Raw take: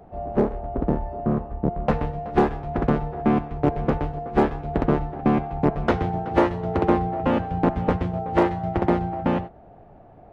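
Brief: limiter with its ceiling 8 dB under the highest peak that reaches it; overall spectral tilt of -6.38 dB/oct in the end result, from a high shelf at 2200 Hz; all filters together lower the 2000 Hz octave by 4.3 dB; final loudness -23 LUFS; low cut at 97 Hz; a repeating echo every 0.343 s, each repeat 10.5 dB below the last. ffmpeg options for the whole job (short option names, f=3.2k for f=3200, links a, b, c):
-af "highpass=97,equalizer=f=2k:t=o:g=-3.5,highshelf=f=2.2k:g=-4.5,alimiter=limit=-14dB:level=0:latency=1,aecho=1:1:343|686|1029:0.299|0.0896|0.0269,volume=3.5dB"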